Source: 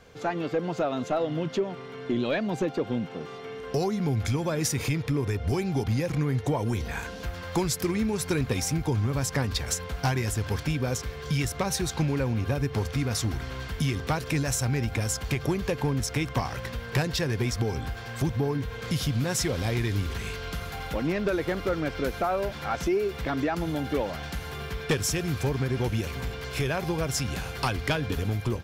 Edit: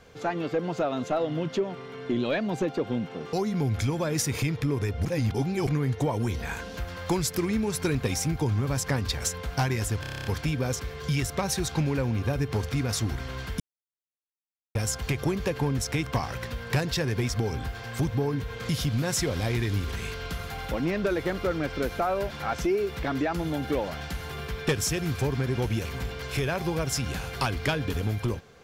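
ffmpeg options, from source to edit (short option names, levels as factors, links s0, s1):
-filter_complex "[0:a]asplit=14[s0][s1][s2][s3][s4][s5][s6][s7][s8][s9][s10][s11][s12][s13];[s0]atrim=end=3.332[s14];[s1]atrim=start=3.788:end=5.512[s15];[s2]atrim=start=5.508:end=6.132,asetpts=PTS-STARTPTS,areverse[s16];[s3]atrim=start=6.128:end=10.502[s17];[s4]atrim=start=10.468:end=10.502[s18];[s5]atrim=start=10.468:end=10.502[s19];[s6]atrim=start=10.468:end=10.502[s20];[s7]atrim=start=10.468:end=10.502[s21];[s8]atrim=start=10.468:end=10.502[s22];[s9]atrim=start=10.468:end=10.502[s23];[s10]atrim=start=10.468:end=10.502[s24];[s11]atrim=start=10.468:end=13.82,asetpts=PTS-STARTPTS,afade=t=out:st=3.348:d=0.004:c=hsin[s25];[s12]atrim=start=13.82:end=14.97,asetpts=PTS-STARTPTS,volume=0[s26];[s13]atrim=start=14.97,asetpts=PTS-STARTPTS,afade=t=in:d=0.004:c=hsin[s27];[s14][s15]acrossfade=d=0.004:c1=hsin:c2=hsin[s28];[s28][s16]acrossfade=d=0.004:c1=hsin:c2=hsin[s29];[s29][s17]acrossfade=d=0.004:c1=hsin:c2=hsin[s30];[s30][s18]acrossfade=d=0.004:c1=hsin:c2=hsin[s31];[s31][s19]acrossfade=d=0.004:c1=hsin:c2=hsin[s32];[s32][s20]acrossfade=d=0.004:c1=hsin:c2=hsin[s33];[s33][s21]acrossfade=d=0.004:c1=hsin:c2=hsin[s34];[s34][s22]acrossfade=d=0.004:c1=hsin:c2=hsin[s35];[s35][s23]acrossfade=d=0.004:c1=hsin:c2=hsin[s36];[s36][s24]acrossfade=d=0.004:c1=hsin:c2=hsin[s37];[s25][s26][s27]concat=n=3:v=0:a=1[s38];[s37][s38]acrossfade=d=0.004:c1=hsin:c2=hsin"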